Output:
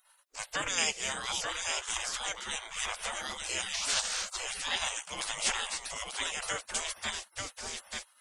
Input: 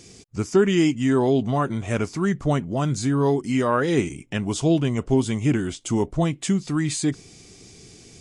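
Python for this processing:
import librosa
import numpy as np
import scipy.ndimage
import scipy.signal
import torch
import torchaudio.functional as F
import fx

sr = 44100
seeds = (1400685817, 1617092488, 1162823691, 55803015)

y = x + 10.0 ** (-4.5 / 20.0) * np.pad(x, (int(888 * sr / 1000.0), 0))[:len(x)]
y = fx.dmg_noise_band(y, sr, seeds[0], low_hz=1500.0, high_hz=5900.0, level_db=-36.0, at=(3.73, 4.35), fade=0.02)
y = fx.spec_gate(y, sr, threshold_db=-30, keep='weak')
y = y * 10.0 ** (7.5 / 20.0)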